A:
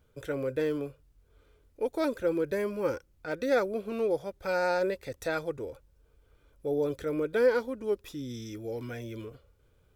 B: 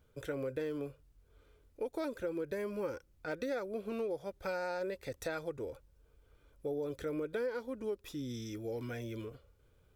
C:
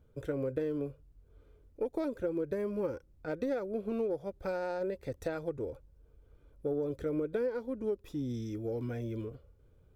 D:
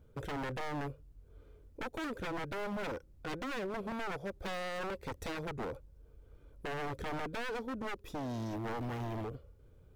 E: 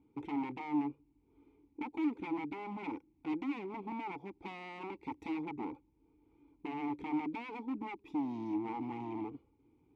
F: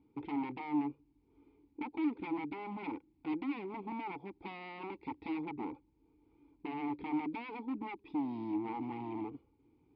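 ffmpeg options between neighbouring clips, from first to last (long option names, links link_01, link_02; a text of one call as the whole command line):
ffmpeg -i in.wav -af "acompressor=threshold=-32dB:ratio=6,volume=-2dB" out.wav
ffmpeg -i in.wav -af "aeval=exprs='0.0531*(cos(1*acos(clip(val(0)/0.0531,-1,1)))-cos(1*PI/2))+0.00531*(cos(3*acos(clip(val(0)/0.0531,-1,1)))-cos(3*PI/2))':channel_layout=same,tiltshelf=frequency=890:gain=6.5,volume=2dB" out.wav
ffmpeg -i in.wav -af "aeval=exprs='(tanh(28.2*val(0)+0.55)-tanh(0.55))/28.2':channel_layout=same,aeval=exprs='0.0112*(abs(mod(val(0)/0.0112+3,4)-2)-1)':channel_layout=same,volume=5.5dB" out.wav
ffmpeg -i in.wav -filter_complex "[0:a]asplit=3[link_01][link_02][link_03];[link_01]bandpass=frequency=300:width_type=q:width=8,volume=0dB[link_04];[link_02]bandpass=frequency=870:width_type=q:width=8,volume=-6dB[link_05];[link_03]bandpass=frequency=2240:width_type=q:width=8,volume=-9dB[link_06];[link_04][link_05][link_06]amix=inputs=3:normalize=0,volume=11dB" out.wav
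ffmpeg -i in.wav -af "aresample=11025,aresample=44100" out.wav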